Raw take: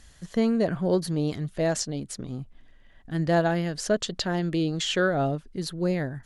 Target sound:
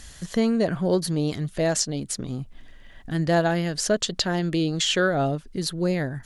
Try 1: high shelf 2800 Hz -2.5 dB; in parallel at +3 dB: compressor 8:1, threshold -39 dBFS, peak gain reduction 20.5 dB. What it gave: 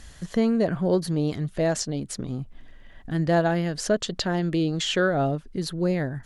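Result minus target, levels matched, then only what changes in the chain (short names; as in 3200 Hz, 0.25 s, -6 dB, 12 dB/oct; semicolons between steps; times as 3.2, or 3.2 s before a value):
4000 Hz band -3.0 dB
change: high shelf 2800 Hz +5 dB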